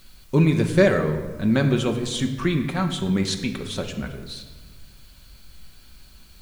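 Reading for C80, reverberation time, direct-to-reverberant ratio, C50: 10.5 dB, 1.4 s, 3.5 dB, 9.0 dB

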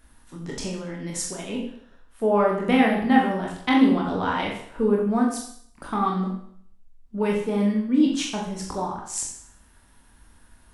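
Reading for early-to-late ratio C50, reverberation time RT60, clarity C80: 4.0 dB, 0.65 s, 7.0 dB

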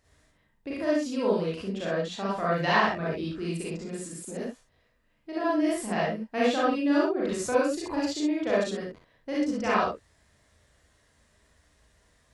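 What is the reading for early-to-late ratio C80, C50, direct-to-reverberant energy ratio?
5.0 dB, -2.5 dB, -7.5 dB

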